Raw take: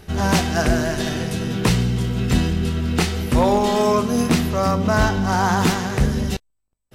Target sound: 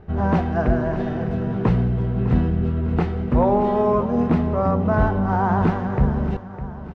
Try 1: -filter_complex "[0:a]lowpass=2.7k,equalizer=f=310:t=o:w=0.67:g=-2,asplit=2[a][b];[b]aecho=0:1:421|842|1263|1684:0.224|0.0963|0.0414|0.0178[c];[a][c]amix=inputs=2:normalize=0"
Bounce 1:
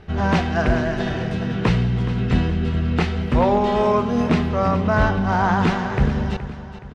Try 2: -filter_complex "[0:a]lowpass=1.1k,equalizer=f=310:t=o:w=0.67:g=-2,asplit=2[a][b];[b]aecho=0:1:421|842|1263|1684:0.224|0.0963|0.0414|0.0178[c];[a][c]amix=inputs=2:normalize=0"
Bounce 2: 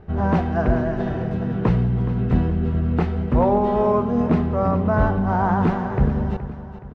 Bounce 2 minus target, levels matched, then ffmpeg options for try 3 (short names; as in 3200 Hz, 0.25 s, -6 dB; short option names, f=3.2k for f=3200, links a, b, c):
echo 0.185 s early
-filter_complex "[0:a]lowpass=1.1k,equalizer=f=310:t=o:w=0.67:g=-2,asplit=2[a][b];[b]aecho=0:1:606|1212|1818|2424:0.224|0.0963|0.0414|0.0178[c];[a][c]amix=inputs=2:normalize=0"